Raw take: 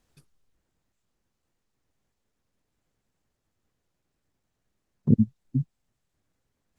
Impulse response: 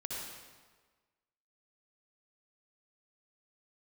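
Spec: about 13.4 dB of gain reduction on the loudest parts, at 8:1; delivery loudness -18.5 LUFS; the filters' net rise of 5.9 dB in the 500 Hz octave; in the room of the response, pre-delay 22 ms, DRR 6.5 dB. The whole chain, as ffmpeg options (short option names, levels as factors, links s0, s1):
-filter_complex "[0:a]equalizer=f=500:t=o:g=7.5,acompressor=threshold=0.0447:ratio=8,asplit=2[s0][s1];[1:a]atrim=start_sample=2205,adelay=22[s2];[s1][s2]afir=irnorm=-1:irlink=0,volume=0.422[s3];[s0][s3]amix=inputs=2:normalize=0,volume=7.5"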